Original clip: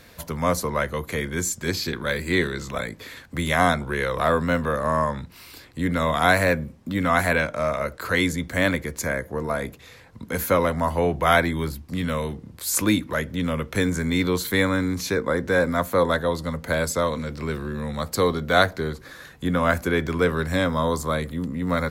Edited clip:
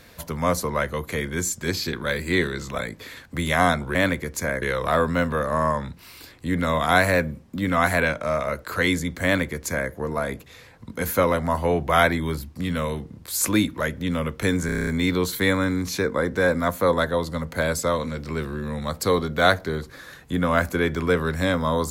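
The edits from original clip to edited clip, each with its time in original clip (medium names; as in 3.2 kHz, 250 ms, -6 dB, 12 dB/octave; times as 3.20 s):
8.57–9.24 s: copy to 3.95 s
13.99 s: stutter 0.03 s, 8 plays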